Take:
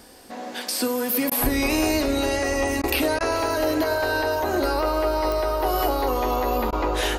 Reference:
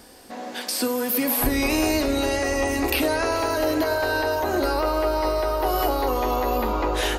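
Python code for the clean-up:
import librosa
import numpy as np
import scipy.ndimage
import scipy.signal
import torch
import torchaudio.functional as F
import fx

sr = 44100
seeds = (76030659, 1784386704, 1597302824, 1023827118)

y = fx.fix_declick_ar(x, sr, threshold=10.0)
y = fx.fix_interpolate(y, sr, at_s=(1.3, 2.82, 3.19, 6.71), length_ms=14.0)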